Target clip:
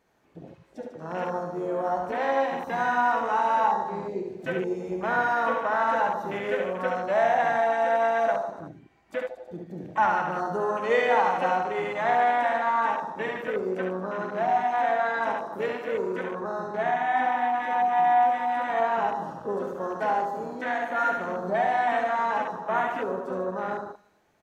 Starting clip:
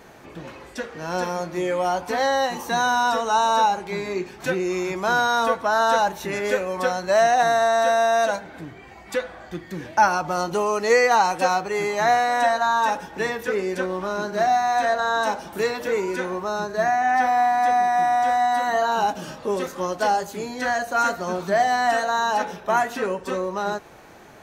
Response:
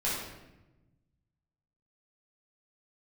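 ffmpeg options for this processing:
-filter_complex "[0:a]asplit=2[a][b];[b]asetrate=55563,aresample=44100,atempo=0.793701,volume=-12dB[c];[a][c]amix=inputs=2:normalize=0,aecho=1:1:70|147|231.7|324.9|427.4:0.631|0.398|0.251|0.158|0.1,afwtdn=0.0447,volume=-6.5dB"

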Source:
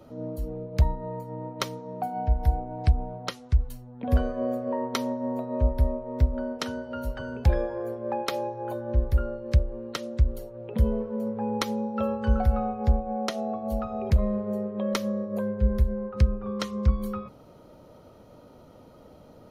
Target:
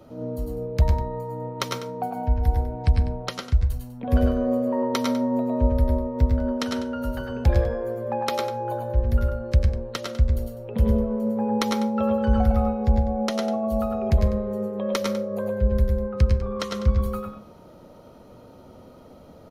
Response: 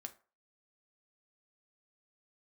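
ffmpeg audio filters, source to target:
-filter_complex "[0:a]aecho=1:1:94:0.299,asplit=2[a][b];[1:a]atrim=start_sample=2205,adelay=105[c];[b][c]afir=irnorm=-1:irlink=0,volume=1.5dB[d];[a][d]amix=inputs=2:normalize=0,volume=1.5dB"

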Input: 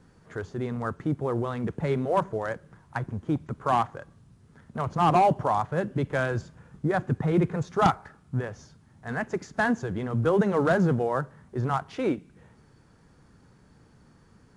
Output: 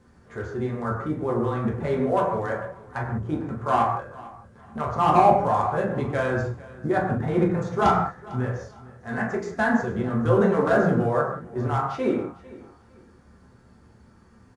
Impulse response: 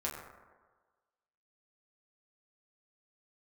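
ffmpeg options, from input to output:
-filter_complex "[0:a]aecho=1:1:450|900:0.1|0.028[a];[1:a]atrim=start_sample=2205,afade=t=out:st=0.25:d=0.01,atrim=end_sample=11466[b];[a][b]afir=irnorm=-1:irlink=0"

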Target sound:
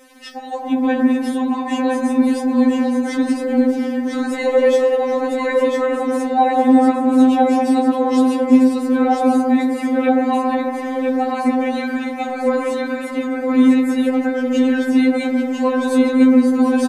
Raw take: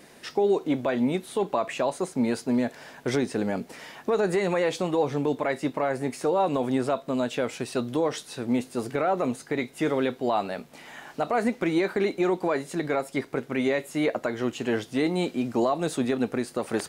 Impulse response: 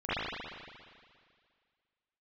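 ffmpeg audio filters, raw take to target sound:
-filter_complex "[0:a]aecho=1:1:1000:0.631,asplit=2[a][b];[1:a]atrim=start_sample=2205,asetrate=26460,aresample=44100,highshelf=f=2.4k:g=-9.5[c];[b][c]afir=irnorm=-1:irlink=0,volume=-12.5dB[d];[a][d]amix=inputs=2:normalize=0,afftfilt=real='re*3.46*eq(mod(b,12),0)':imag='im*3.46*eq(mod(b,12),0)':win_size=2048:overlap=0.75,volume=4.5dB"

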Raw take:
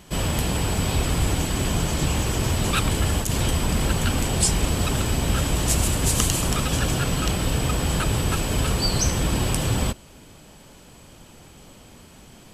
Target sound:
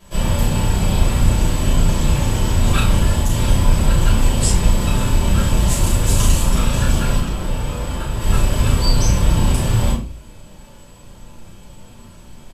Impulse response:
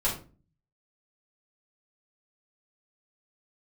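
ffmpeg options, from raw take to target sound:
-filter_complex "[0:a]asettb=1/sr,asplit=3[a][b][c];[a]atrim=end=7.174[d];[b]atrim=start=7.17:end=8.21,asetpts=PTS-STARTPTS,afade=t=in:d=0.004:c=qsin,afade=t=out:st=1.036:d=0.004:c=qsin,acrossover=split=300|2400[e][f][g];[e]acompressor=threshold=-29dB:ratio=4[h];[f]acompressor=threshold=-32dB:ratio=4[i];[g]acompressor=threshold=-39dB:ratio=4[j];[h][i][j]amix=inputs=3:normalize=0[k];[c]atrim=start=8.206[l];[d][k]acrossfade=d=0.004:c1=hsin:c2=qsin[m];[m][l]acrossfade=d=0.004:c1=qsin:c2=hsin,asplit=2[n][o];[o]adelay=35,volume=-5dB[p];[n][p]amix=inputs=2:normalize=0[q];[1:a]atrim=start_sample=2205[r];[q][r]afir=irnorm=-1:irlink=0,volume=-8dB"

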